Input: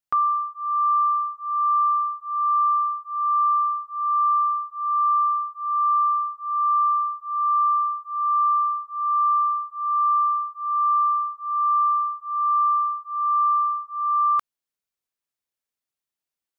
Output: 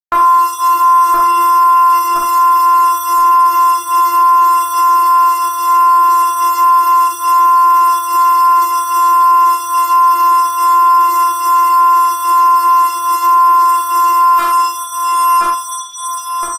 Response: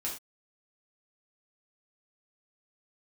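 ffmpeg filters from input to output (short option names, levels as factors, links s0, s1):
-filter_complex "[0:a]asplit=2[s0][s1];[s1]adelay=1019,lowpass=f=1100:p=1,volume=0.708,asplit=2[s2][s3];[s3]adelay=1019,lowpass=f=1100:p=1,volume=0.54,asplit=2[s4][s5];[s5]adelay=1019,lowpass=f=1100:p=1,volume=0.54,asplit=2[s6][s7];[s7]adelay=1019,lowpass=f=1100:p=1,volume=0.54,asplit=2[s8][s9];[s9]adelay=1019,lowpass=f=1100:p=1,volume=0.54,asplit=2[s10][s11];[s11]adelay=1019,lowpass=f=1100:p=1,volume=0.54,asplit=2[s12][s13];[s13]adelay=1019,lowpass=f=1100:p=1,volume=0.54[s14];[s0][s2][s4][s6][s8][s10][s12][s14]amix=inputs=8:normalize=0,acrusher=bits=7:mix=0:aa=0.5,flanger=delay=8.2:depth=3:regen=-11:speed=0.33:shape=sinusoidal[s15];[1:a]atrim=start_sample=2205[s16];[s15][s16]afir=irnorm=-1:irlink=0,afftfilt=real='hypot(re,im)*cos(PI*b)':imag='0':win_size=512:overlap=0.75,alimiter=level_in=63.1:limit=0.891:release=50:level=0:latency=1" -ar 48000 -c:a aac -b:a 48k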